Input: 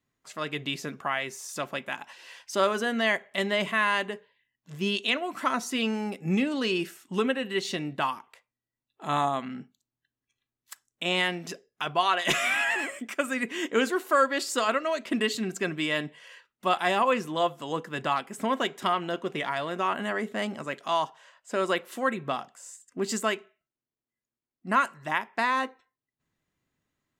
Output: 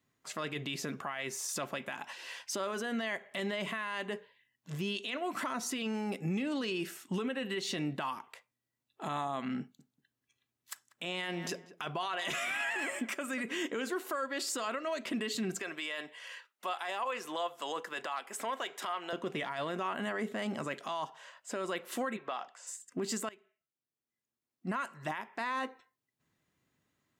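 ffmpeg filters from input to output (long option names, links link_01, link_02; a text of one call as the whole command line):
ffmpeg -i in.wav -filter_complex "[0:a]asettb=1/sr,asplit=3[link_01][link_02][link_03];[link_01]atrim=end=9.604[link_04];[link_02]atrim=start=9.6:end=13.54,asetpts=PTS-STARTPTS,afade=type=in:duration=0.004:curve=qsin,afade=type=out:start_time=3.936:duration=0.004:curve=qsin,asplit=2[link_05][link_06];[link_06]adelay=190,lowpass=frequency=1800:poles=1,volume=-18dB,asplit=2[link_07][link_08];[link_08]adelay=190,lowpass=frequency=1800:poles=1,volume=0.18[link_09];[link_05][link_07][link_09]amix=inputs=3:normalize=0,atrim=end_sample=173754[link_10];[link_03]atrim=start=13.536[link_11];[link_04][link_10]acrossfade=duration=0.004:curve1=hsin:curve2=qsin[link_12];[link_12][link_11]acrossfade=duration=0.004:curve1=qsin:curve2=hsin,asettb=1/sr,asplit=3[link_13][link_14][link_15];[link_13]atrim=end=15.594[link_16];[link_14]atrim=start=15.59:end=19.13,asetpts=PTS-STARTPTS,afade=type=in:duration=0.004:curve=qsin,afade=type=out:start_time=3.536:duration=0.004:curve=qsin,highpass=550[link_17];[link_15]atrim=start=19.126[link_18];[link_16][link_17]acrossfade=duration=0.004:curve1=hsin:curve2=qsin[link_19];[link_19][link_18]acrossfade=duration=0.004:curve1=qsin:curve2=hsin,asplit=3[link_20][link_21][link_22];[link_20]afade=type=out:start_time=22.16:duration=0.02[link_23];[link_21]highpass=530,lowpass=4800,afade=type=in:start_time=22.16:duration=0.02,afade=type=out:start_time=22.66:duration=0.02[link_24];[link_22]afade=type=in:start_time=22.66:duration=0.02[link_25];[link_23][link_24][link_25]amix=inputs=3:normalize=0,asplit=2[link_26][link_27];[link_26]atrim=end=23.29,asetpts=PTS-STARTPTS,afade=type=out:start_time=23.286:duration=0.004:curve=hsin:silence=0.0749894[link_28];[link_27]atrim=start=23.29,asetpts=PTS-STARTPTS,afade=type=in:duration=1.54:silence=0.0749894[link_29];[link_28][link_29]concat=n=2:v=0:a=1,acompressor=threshold=-31dB:ratio=6,alimiter=level_in=5dB:limit=-24dB:level=0:latency=1:release=21,volume=-5dB,highpass=72,volume=2.5dB" out.wav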